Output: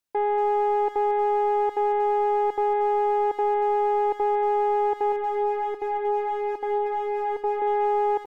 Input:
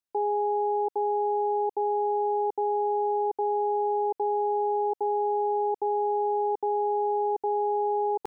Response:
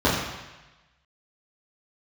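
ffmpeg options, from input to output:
-filter_complex "[0:a]acontrast=32,asoftclip=type=tanh:threshold=0.133,asettb=1/sr,asplit=3[s0][s1][s2];[s0]atrim=end=5.124[s3];[s1]atrim=start=5.12:end=7.62,asetpts=PTS-STARTPTS,afade=t=in:d=0.004:c=qsin,afade=t=out:st=2.496:d=0.004:c=qsin,flanger=delay=2.8:depth=1.8:regen=-2:speed=1.5:shape=sinusoidal[s4];[s2]atrim=start=7.616[s5];[s3][s4]acrossfade=d=0.004:c1=hsin:c2=qsin[s6];[s6][s5]acrossfade=d=0.004:c1=qsin:c2=hsin,asplit=2[s7][s8];[s8]adelay=230,highpass=300,lowpass=3400,asoftclip=type=hard:threshold=0.0398,volume=0.355[s9];[s7][s9]amix=inputs=2:normalize=0"

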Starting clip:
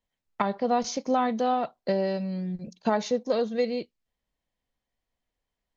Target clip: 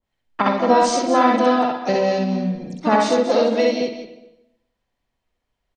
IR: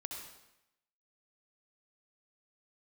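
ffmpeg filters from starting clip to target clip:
-filter_complex "[0:a]lowpass=f=4000:p=1,asplit=2[s0][s1];[s1]asetrate=58866,aresample=44100,atempo=0.749154,volume=0.447[s2];[s0][s2]amix=inputs=2:normalize=0,aecho=1:1:64.14|236.2:0.794|0.282,asplit=2[s3][s4];[1:a]atrim=start_sample=2205,lowpass=4400,adelay=56[s5];[s4][s5]afir=irnorm=-1:irlink=0,volume=0.531[s6];[s3][s6]amix=inputs=2:normalize=0,adynamicequalizer=threshold=0.0158:dfrequency=1600:dqfactor=0.7:tfrequency=1600:tqfactor=0.7:attack=5:release=100:ratio=0.375:range=2.5:mode=boostabove:tftype=highshelf,volume=1.78"

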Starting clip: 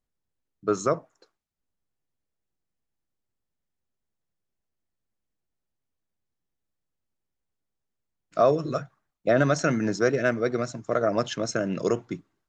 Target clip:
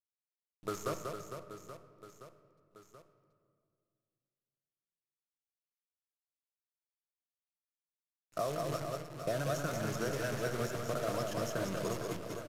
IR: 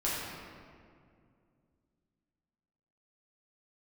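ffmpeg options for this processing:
-filter_complex "[0:a]equalizer=f=250:t=o:w=1:g=-11,equalizer=f=500:t=o:w=1:g=-6,equalizer=f=2000:t=o:w=1:g=-11,equalizer=f=4000:t=o:w=1:g=-10,acrossover=split=570|2700[s0][s1][s2];[s0]acompressor=threshold=0.01:ratio=4[s3];[s1]acompressor=threshold=0.00794:ratio=4[s4];[s2]acompressor=threshold=0.00316:ratio=4[s5];[s3][s4][s5]amix=inputs=3:normalize=0,acrusher=bits=8:dc=4:mix=0:aa=0.000001,aecho=1:1:190|456|828.4|1350|2080:0.631|0.398|0.251|0.158|0.1,asplit=2[s6][s7];[1:a]atrim=start_sample=2205[s8];[s7][s8]afir=irnorm=-1:irlink=0,volume=0.158[s9];[s6][s9]amix=inputs=2:normalize=0,aresample=32000,aresample=44100"

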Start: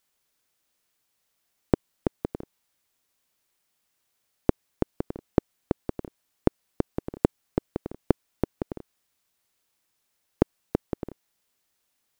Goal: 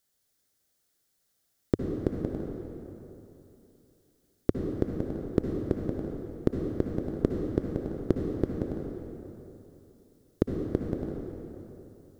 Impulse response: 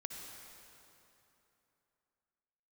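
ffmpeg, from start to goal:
-filter_complex "[0:a]acontrast=44,equalizer=f=100:t=o:w=0.67:g=4,equalizer=f=1000:t=o:w=0.67:g=-9,equalizer=f=2500:t=o:w=0.67:g=-9[s0];[1:a]atrim=start_sample=2205[s1];[s0][s1]afir=irnorm=-1:irlink=0,volume=0.794"

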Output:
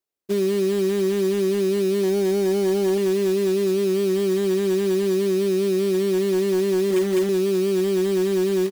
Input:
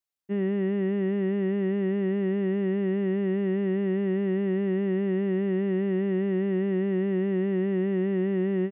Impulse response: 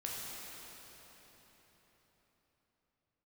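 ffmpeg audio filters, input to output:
-filter_complex "[0:a]asettb=1/sr,asplit=3[s0][s1][s2];[s0]atrim=end=2.034[s3];[s1]atrim=start=2.03:end=2.98,asetpts=PTS-STARTPTS,afade=t=in:d=0.004:c=qsin,afade=t=out:st=0.946:d=0.004:c=qsin,equalizer=f=800:w=2.7:g=14[s4];[s2]atrim=start=2.976[s5];[s3][s4]acrossfade=d=0.004:c1=hsin:c2=qsin[s6];[s6][s5]acrossfade=d=0.004:c1=qsin:c2=hsin,asettb=1/sr,asplit=3[s7][s8][s9];[s7]atrim=end=6.894[s10];[s8]atrim=start=6.89:end=7.29,asetpts=PTS-STARTPTS,afade=t=in:d=0.004:c=qsin,afade=t=out:st=0.396:d=0.004:c=qsin,asplit=2[s11][s12];[s12]adelay=14,volume=0.501[s13];[s11][s13]amix=inputs=2:normalize=0,atrim=end_sample=17640[s14];[s9]atrim=start=7.286[s15];[s10][s14]acrossfade=d=0.004:c1=hsin:c2=qsin[s16];[s16][s15]acrossfade=d=0.004:c1=qsin:c2=hsin,aecho=1:1:425:0.0794,acompressor=threshold=0.0398:ratio=4,equalizer=f=390:w=1.1:g=12.5,acrusher=bits=3:mode=log:mix=0:aa=0.000001"

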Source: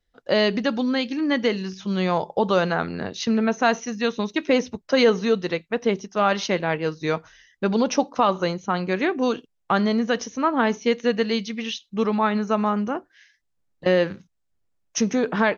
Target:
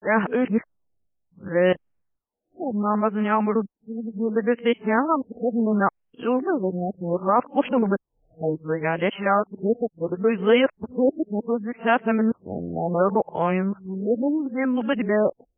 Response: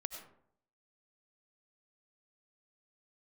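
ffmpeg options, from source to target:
-af "areverse,afftfilt=real='re*lt(b*sr/1024,760*pow(3400/760,0.5+0.5*sin(2*PI*0.69*pts/sr)))':imag='im*lt(b*sr/1024,760*pow(3400/760,0.5+0.5*sin(2*PI*0.69*pts/sr)))':win_size=1024:overlap=0.75"

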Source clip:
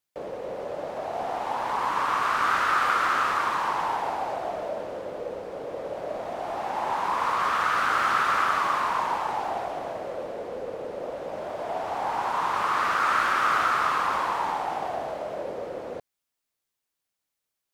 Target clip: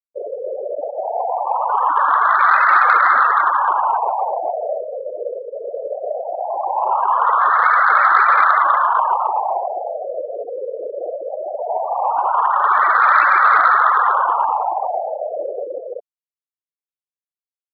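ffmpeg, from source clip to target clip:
-af "afftfilt=real='re*gte(hypot(re,im),0.0794)':imag='im*gte(hypot(re,im),0.0794)':win_size=1024:overlap=0.75,adynamicequalizer=threshold=0.00562:dfrequency=320:dqfactor=1.4:tfrequency=320:tqfactor=1.4:attack=5:release=100:ratio=0.375:range=1.5:mode=cutabove:tftype=bell,acontrast=86,highshelf=f=2700:g=8,volume=1.41"

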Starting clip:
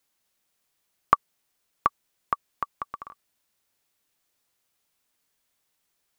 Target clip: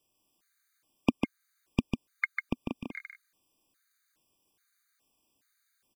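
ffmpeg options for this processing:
-filter_complex "[0:a]equalizer=f=620:t=o:w=0.36:g=11.5,asplit=2[s0][s1];[s1]acompressor=threshold=0.0282:ratio=6,volume=0.75[s2];[s0][s2]amix=inputs=2:normalize=0,asetrate=45864,aresample=44100,aeval=exprs='val(0)*sin(2*PI*950*n/s)':c=same,aecho=1:1:148:0.596,afftfilt=real='re*gt(sin(2*PI*1.2*pts/sr)*(1-2*mod(floor(b*sr/1024/1200),2)),0)':imag='im*gt(sin(2*PI*1.2*pts/sr)*(1-2*mod(floor(b*sr/1024/1200),2)),0)':win_size=1024:overlap=0.75"

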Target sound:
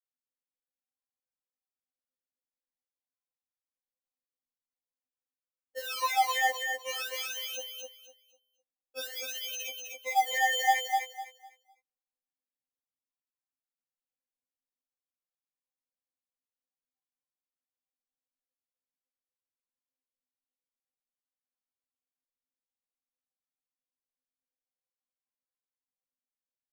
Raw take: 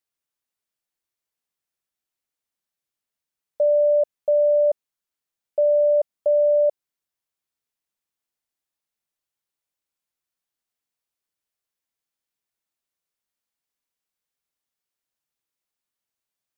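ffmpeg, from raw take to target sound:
-af "agate=range=0.0224:threshold=0.2:ratio=3:detection=peak,acrusher=samples=24:mix=1:aa=0.000001:lfo=1:lforange=24:lforate=0.81,alimiter=level_in=2.11:limit=0.0631:level=0:latency=1:release=44,volume=0.473,atempo=0.62,equalizer=f=580:w=0.45:g=8,aecho=1:1:252|504|756|1008:0.668|0.167|0.0418|0.0104,afftfilt=real='re*3.46*eq(mod(b,12),0)':imag='im*3.46*eq(mod(b,12),0)':win_size=2048:overlap=0.75,volume=2"

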